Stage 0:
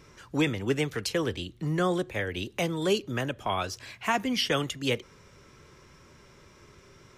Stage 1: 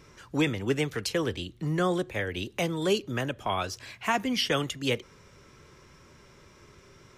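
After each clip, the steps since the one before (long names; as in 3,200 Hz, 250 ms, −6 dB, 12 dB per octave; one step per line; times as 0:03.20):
no processing that can be heard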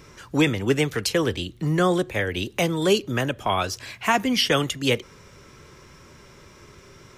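high-shelf EQ 9,900 Hz +4 dB
level +6 dB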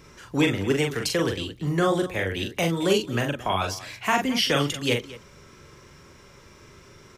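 multi-tap delay 42/222 ms −4/−17.5 dB
level −3 dB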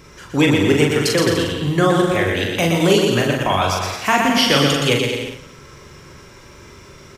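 bouncing-ball delay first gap 120 ms, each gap 0.8×, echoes 5
level +6 dB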